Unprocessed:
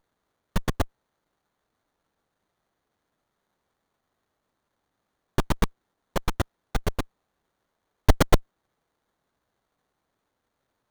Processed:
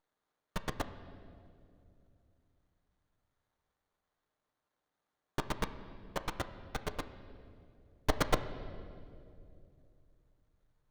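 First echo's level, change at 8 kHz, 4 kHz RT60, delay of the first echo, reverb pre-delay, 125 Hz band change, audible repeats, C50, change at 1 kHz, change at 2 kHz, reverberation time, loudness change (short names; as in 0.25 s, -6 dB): none, -9.5 dB, 1.7 s, none, 7 ms, -13.5 dB, none, 11.5 dB, -7.5 dB, -7.0 dB, 2.6 s, -11.0 dB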